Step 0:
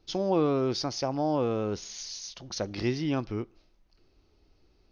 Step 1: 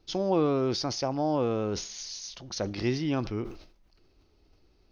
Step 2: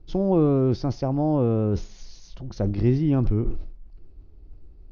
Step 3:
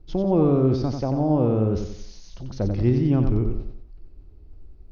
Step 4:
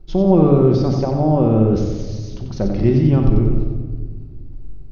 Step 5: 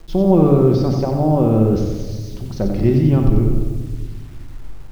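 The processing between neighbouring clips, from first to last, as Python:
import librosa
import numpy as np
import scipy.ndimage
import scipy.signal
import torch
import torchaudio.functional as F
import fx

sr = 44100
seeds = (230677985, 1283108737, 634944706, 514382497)

y1 = fx.sustainer(x, sr, db_per_s=91.0)
y2 = fx.tilt_eq(y1, sr, slope=-4.5)
y2 = y2 * librosa.db_to_amplitude(-1.5)
y3 = fx.echo_feedback(y2, sr, ms=91, feedback_pct=39, wet_db=-6.5)
y4 = fx.room_shoebox(y3, sr, seeds[0], volume_m3=1600.0, walls='mixed', distance_m=1.1)
y4 = y4 * librosa.db_to_amplitude(4.5)
y5 = fx.quant_dither(y4, sr, seeds[1], bits=8, dither='none')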